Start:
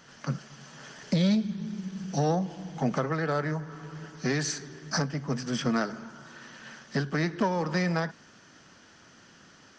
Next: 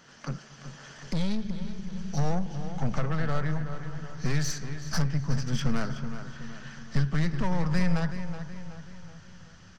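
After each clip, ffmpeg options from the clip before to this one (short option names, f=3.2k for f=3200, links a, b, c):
-filter_complex "[0:a]aeval=exprs='(tanh(17.8*val(0)+0.35)-tanh(0.35))/17.8':c=same,asplit=2[a][b];[b]adelay=374,lowpass=f=4.6k:p=1,volume=-10dB,asplit=2[c][d];[d]adelay=374,lowpass=f=4.6k:p=1,volume=0.5,asplit=2[e][f];[f]adelay=374,lowpass=f=4.6k:p=1,volume=0.5,asplit=2[g][h];[h]adelay=374,lowpass=f=4.6k:p=1,volume=0.5,asplit=2[i][j];[j]adelay=374,lowpass=f=4.6k:p=1,volume=0.5[k];[a][c][e][g][i][k]amix=inputs=6:normalize=0,asubboost=boost=10.5:cutoff=99"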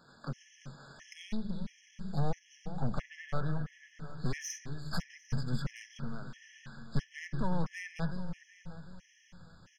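-af "afftfilt=real='re*gt(sin(2*PI*1.5*pts/sr)*(1-2*mod(floor(b*sr/1024/1700),2)),0)':imag='im*gt(sin(2*PI*1.5*pts/sr)*(1-2*mod(floor(b*sr/1024/1700),2)),0)':win_size=1024:overlap=0.75,volume=-4.5dB"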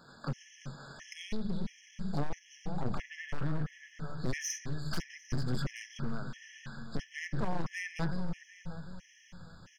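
-af "asoftclip=type=hard:threshold=-30.5dB,volume=4dB"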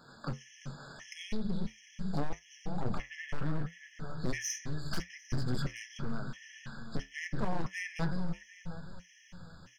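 -af "flanger=delay=7.9:depth=5.1:regen=-66:speed=0.78:shape=triangular,volume=4.5dB"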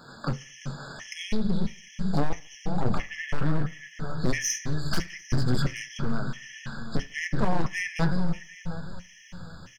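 -af "aecho=1:1:73|146|219:0.0631|0.0278|0.0122,volume=8.5dB"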